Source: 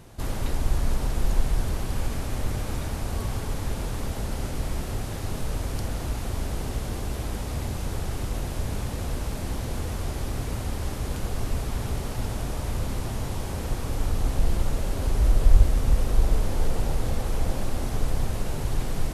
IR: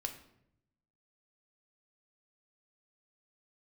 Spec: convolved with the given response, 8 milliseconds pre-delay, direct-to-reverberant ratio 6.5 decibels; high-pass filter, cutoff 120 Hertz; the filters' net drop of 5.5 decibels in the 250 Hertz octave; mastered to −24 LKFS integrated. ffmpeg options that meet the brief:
-filter_complex "[0:a]highpass=120,equalizer=frequency=250:width_type=o:gain=-7,asplit=2[link_01][link_02];[1:a]atrim=start_sample=2205,adelay=8[link_03];[link_02][link_03]afir=irnorm=-1:irlink=0,volume=-6dB[link_04];[link_01][link_04]amix=inputs=2:normalize=0,volume=10.5dB"

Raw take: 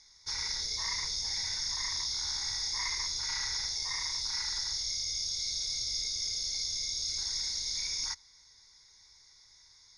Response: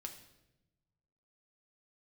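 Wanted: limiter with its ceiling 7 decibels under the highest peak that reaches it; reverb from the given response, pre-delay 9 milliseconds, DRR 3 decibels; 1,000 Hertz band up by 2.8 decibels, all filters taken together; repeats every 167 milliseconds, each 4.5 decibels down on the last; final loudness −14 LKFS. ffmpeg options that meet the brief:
-filter_complex "[0:a]equalizer=frequency=1000:width_type=o:gain=3,alimiter=level_in=3.5dB:limit=-24dB:level=0:latency=1,volume=-3.5dB,aecho=1:1:167|334|501|668|835|1002|1169|1336|1503:0.596|0.357|0.214|0.129|0.0772|0.0463|0.0278|0.0167|0.01,asplit=2[link_01][link_02];[1:a]atrim=start_sample=2205,adelay=9[link_03];[link_02][link_03]afir=irnorm=-1:irlink=0,volume=0.5dB[link_04];[link_01][link_04]amix=inputs=2:normalize=0,volume=17dB"

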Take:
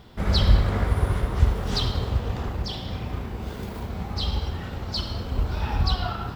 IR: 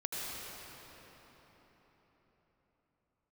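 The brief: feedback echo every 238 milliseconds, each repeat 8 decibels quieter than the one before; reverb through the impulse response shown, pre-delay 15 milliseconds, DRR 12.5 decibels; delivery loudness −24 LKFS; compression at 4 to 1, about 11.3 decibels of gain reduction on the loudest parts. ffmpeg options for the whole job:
-filter_complex "[0:a]acompressor=threshold=-25dB:ratio=4,aecho=1:1:238|476|714|952|1190:0.398|0.159|0.0637|0.0255|0.0102,asplit=2[link_01][link_02];[1:a]atrim=start_sample=2205,adelay=15[link_03];[link_02][link_03]afir=irnorm=-1:irlink=0,volume=-16.5dB[link_04];[link_01][link_04]amix=inputs=2:normalize=0,volume=6.5dB"

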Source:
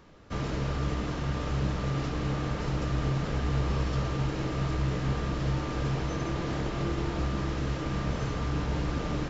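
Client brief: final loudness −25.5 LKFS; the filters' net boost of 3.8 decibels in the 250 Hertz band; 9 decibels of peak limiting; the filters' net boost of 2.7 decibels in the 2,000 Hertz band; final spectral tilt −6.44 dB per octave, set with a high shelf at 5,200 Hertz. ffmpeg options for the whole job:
ffmpeg -i in.wav -af "equalizer=frequency=250:width_type=o:gain=5.5,equalizer=frequency=2000:width_type=o:gain=4,highshelf=frequency=5200:gain=-5,volume=7.5dB,alimiter=limit=-16.5dB:level=0:latency=1" out.wav

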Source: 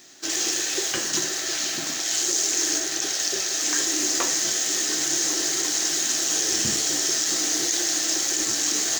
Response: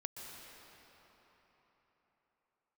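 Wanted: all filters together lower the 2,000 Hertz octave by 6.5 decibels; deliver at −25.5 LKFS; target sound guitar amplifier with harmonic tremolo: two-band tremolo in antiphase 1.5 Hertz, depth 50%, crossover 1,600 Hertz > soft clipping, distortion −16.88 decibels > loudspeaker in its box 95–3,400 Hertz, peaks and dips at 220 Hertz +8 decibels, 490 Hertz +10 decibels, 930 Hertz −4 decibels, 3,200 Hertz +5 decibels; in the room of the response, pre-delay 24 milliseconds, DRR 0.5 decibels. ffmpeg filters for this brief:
-filter_complex "[0:a]equalizer=frequency=2000:width_type=o:gain=-8.5,asplit=2[link_01][link_02];[1:a]atrim=start_sample=2205,adelay=24[link_03];[link_02][link_03]afir=irnorm=-1:irlink=0,volume=1dB[link_04];[link_01][link_04]amix=inputs=2:normalize=0,acrossover=split=1600[link_05][link_06];[link_05]aeval=exprs='val(0)*(1-0.5/2+0.5/2*cos(2*PI*1.5*n/s))':channel_layout=same[link_07];[link_06]aeval=exprs='val(0)*(1-0.5/2-0.5/2*cos(2*PI*1.5*n/s))':channel_layout=same[link_08];[link_07][link_08]amix=inputs=2:normalize=0,asoftclip=threshold=-18dB,highpass=95,equalizer=frequency=220:width_type=q:width=4:gain=8,equalizer=frequency=490:width_type=q:width=4:gain=10,equalizer=frequency=930:width_type=q:width=4:gain=-4,equalizer=frequency=3200:width_type=q:width=4:gain=5,lowpass=frequency=3400:width=0.5412,lowpass=frequency=3400:width=1.3066,volume=7dB"

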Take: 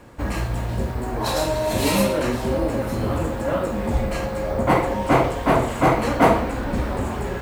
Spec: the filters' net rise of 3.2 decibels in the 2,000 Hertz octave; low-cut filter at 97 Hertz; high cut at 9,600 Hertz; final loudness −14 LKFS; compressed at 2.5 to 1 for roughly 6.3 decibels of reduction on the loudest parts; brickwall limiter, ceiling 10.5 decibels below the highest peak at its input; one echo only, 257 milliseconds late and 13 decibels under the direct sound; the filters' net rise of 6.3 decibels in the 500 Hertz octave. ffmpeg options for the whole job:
ffmpeg -i in.wav -af "highpass=97,lowpass=9600,equalizer=frequency=500:width_type=o:gain=7.5,equalizer=frequency=2000:width_type=o:gain=3.5,acompressor=threshold=-16dB:ratio=2.5,alimiter=limit=-16dB:level=0:latency=1,aecho=1:1:257:0.224,volume=10.5dB" out.wav

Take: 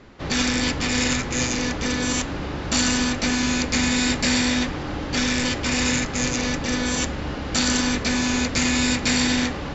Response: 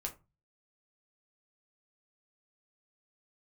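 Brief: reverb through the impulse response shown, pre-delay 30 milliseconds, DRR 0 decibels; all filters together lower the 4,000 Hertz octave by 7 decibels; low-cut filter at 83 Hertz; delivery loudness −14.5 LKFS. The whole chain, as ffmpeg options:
-filter_complex "[0:a]highpass=83,equalizer=frequency=4000:width_type=o:gain=-9,asplit=2[link_01][link_02];[1:a]atrim=start_sample=2205,adelay=30[link_03];[link_02][link_03]afir=irnorm=-1:irlink=0,volume=0.5dB[link_04];[link_01][link_04]amix=inputs=2:normalize=0,volume=7.5dB"

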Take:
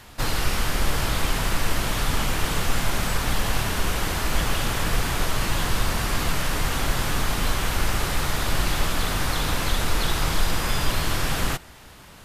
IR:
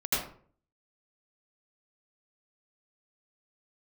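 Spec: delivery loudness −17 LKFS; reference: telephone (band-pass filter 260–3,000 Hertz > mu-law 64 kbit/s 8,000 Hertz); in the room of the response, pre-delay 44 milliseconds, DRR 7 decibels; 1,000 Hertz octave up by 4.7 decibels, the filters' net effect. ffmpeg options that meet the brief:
-filter_complex "[0:a]equalizer=frequency=1000:width_type=o:gain=6,asplit=2[link_01][link_02];[1:a]atrim=start_sample=2205,adelay=44[link_03];[link_02][link_03]afir=irnorm=-1:irlink=0,volume=-16dB[link_04];[link_01][link_04]amix=inputs=2:normalize=0,highpass=260,lowpass=3000,volume=9dB" -ar 8000 -c:a pcm_mulaw

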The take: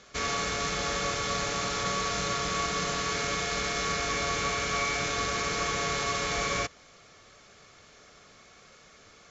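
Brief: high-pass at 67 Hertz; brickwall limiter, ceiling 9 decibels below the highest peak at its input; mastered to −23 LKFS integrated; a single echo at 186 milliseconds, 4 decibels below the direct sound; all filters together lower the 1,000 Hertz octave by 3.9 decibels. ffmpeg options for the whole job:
ffmpeg -i in.wav -af "highpass=67,equalizer=frequency=1000:width_type=o:gain=-5,alimiter=level_in=3dB:limit=-24dB:level=0:latency=1,volume=-3dB,aecho=1:1:186:0.631,volume=10.5dB" out.wav

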